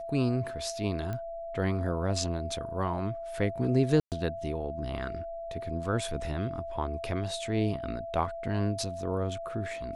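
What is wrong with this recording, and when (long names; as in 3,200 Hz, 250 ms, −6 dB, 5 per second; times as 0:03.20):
whistle 670 Hz −36 dBFS
0:01.13: click −23 dBFS
0:04.00–0:04.12: drop-out 118 ms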